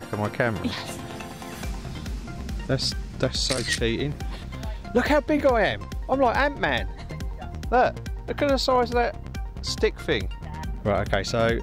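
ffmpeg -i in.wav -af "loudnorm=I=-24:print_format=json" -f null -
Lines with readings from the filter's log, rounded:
"input_i" : "-25.6",
"input_tp" : "-10.8",
"input_lra" : "3.7",
"input_thresh" : "-35.8",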